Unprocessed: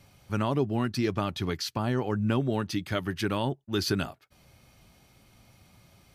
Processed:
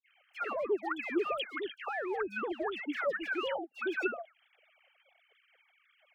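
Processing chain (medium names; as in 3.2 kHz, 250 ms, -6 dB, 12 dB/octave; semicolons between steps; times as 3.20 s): formants replaced by sine waves; high-pass 470 Hz 24 dB/octave; peaking EQ 1 kHz -15 dB 0.34 oct; in parallel at -6 dB: overload inside the chain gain 34.5 dB; on the sum: phase dispersion lows, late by 131 ms, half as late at 1.5 kHz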